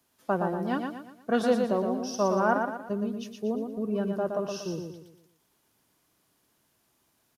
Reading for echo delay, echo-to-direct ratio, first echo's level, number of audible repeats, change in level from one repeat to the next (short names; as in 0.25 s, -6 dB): 0.118 s, -4.0 dB, -5.0 dB, 4, -7.5 dB